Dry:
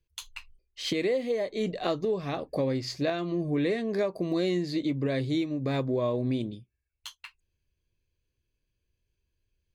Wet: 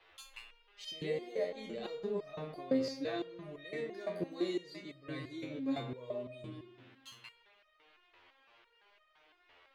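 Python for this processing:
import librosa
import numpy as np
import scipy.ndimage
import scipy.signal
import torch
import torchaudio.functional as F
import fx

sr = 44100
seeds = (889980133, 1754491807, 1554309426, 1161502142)

y = fx.rev_spring(x, sr, rt60_s=1.4, pass_ms=(32, 56), chirp_ms=45, drr_db=6.5)
y = fx.dmg_noise_band(y, sr, seeds[0], low_hz=320.0, high_hz=3100.0, level_db=-57.0)
y = fx.resonator_held(y, sr, hz=5.9, low_hz=88.0, high_hz=620.0)
y = F.gain(torch.from_numpy(y), 2.0).numpy()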